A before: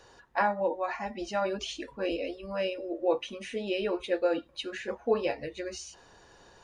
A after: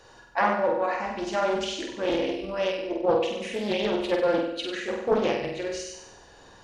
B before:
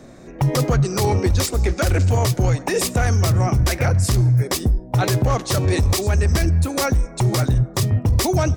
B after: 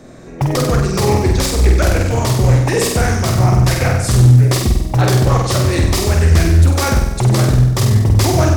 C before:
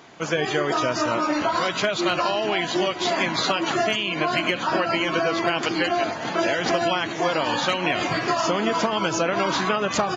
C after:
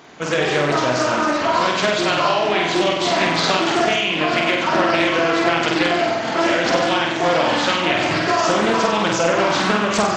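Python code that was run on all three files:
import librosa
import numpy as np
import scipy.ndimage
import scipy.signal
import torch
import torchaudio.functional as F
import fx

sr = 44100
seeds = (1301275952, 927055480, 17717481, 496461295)

p1 = x + fx.room_flutter(x, sr, wall_m=8.2, rt60_s=0.88, dry=0)
p2 = fx.doppler_dist(p1, sr, depth_ms=0.35)
y = p2 * 10.0 ** (2.5 / 20.0)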